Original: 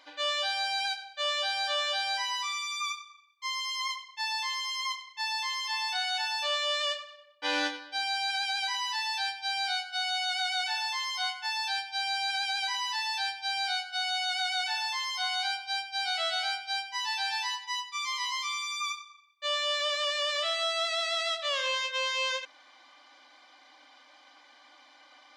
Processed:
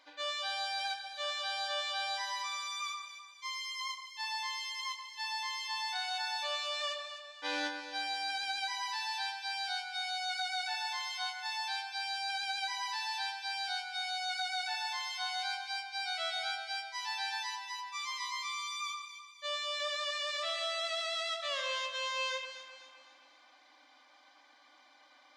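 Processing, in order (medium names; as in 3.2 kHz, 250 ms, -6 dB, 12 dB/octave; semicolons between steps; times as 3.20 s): band-stop 3 kHz, Q 23; on a send: echo whose repeats swap between lows and highs 128 ms, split 1.8 kHz, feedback 66%, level -6.5 dB; on the sum: trim -6 dB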